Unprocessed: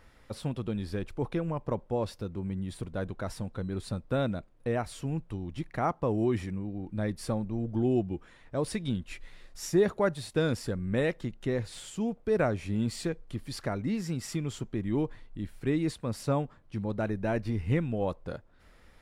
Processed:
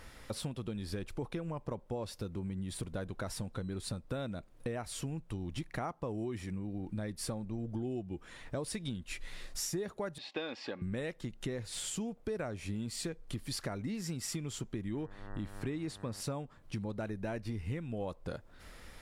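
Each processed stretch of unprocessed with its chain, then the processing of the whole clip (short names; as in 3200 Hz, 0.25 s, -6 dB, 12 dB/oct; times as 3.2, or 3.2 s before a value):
10.18–10.82 speaker cabinet 410–4100 Hz, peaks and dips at 510 Hz -4 dB, 790 Hz +5 dB, 2600 Hz +5 dB + notch 1400 Hz, Q 9.5 + comb 3.6 ms, depth 34%
14.93–16.2 high shelf 7700 Hz -7 dB + buzz 100 Hz, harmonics 19, -51 dBFS
whole clip: bell 11000 Hz +7 dB 2.6 oct; compressor 6:1, threshold -41 dBFS; gain +5 dB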